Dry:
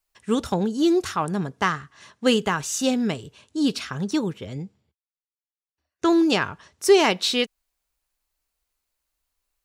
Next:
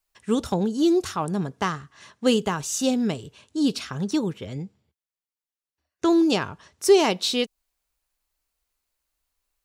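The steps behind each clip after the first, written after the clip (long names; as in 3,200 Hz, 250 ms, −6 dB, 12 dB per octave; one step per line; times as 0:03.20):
dynamic equaliser 1,800 Hz, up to −7 dB, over −38 dBFS, Q 1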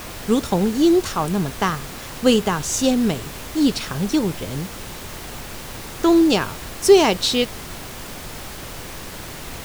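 background noise pink −38 dBFS
level +4.5 dB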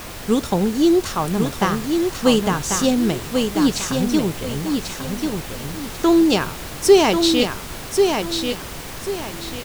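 repeating echo 1,091 ms, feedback 31%, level −5 dB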